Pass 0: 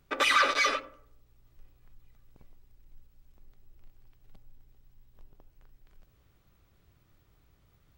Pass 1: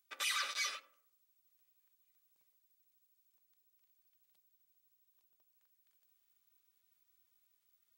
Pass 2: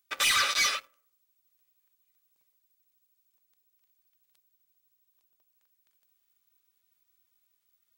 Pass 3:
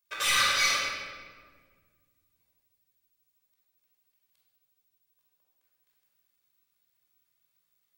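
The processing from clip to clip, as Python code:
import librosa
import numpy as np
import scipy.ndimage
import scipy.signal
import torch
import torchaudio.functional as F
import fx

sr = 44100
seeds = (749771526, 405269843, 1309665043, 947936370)

y1 = scipy.signal.sosfilt(scipy.signal.butter(2, 65.0, 'highpass', fs=sr, output='sos'), x)
y1 = np.diff(y1, prepend=0.0)
y1 = y1 * librosa.db_to_amplitude(-2.5)
y2 = fx.leveller(y1, sr, passes=2)
y2 = y2 * librosa.db_to_amplitude(6.5)
y3 = fx.room_shoebox(y2, sr, seeds[0], volume_m3=2000.0, walls='mixed', distance_m=5.3)
y3 = y3 * librosa.db_to_amplitude(-7.0)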